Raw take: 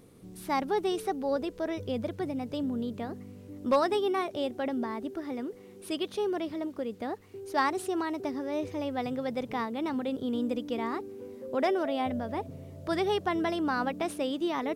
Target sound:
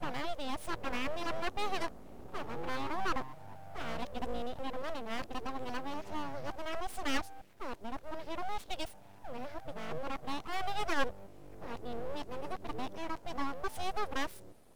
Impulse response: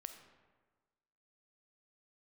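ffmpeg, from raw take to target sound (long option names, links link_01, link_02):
-af "areverse,aeval=exprs='abs(val(0))':channel_layout=same,volume=-3.5dB"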